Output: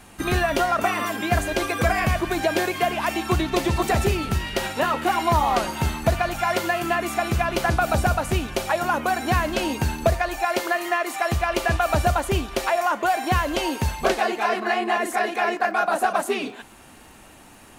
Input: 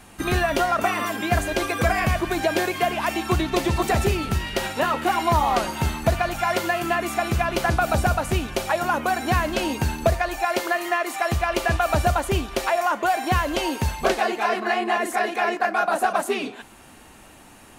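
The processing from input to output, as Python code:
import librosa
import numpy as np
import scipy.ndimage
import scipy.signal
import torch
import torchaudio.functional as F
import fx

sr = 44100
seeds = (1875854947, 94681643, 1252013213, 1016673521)

y = fx.dmg_crackle(x, sr, seeds[0], per_s=49.0, level_db=-42.0)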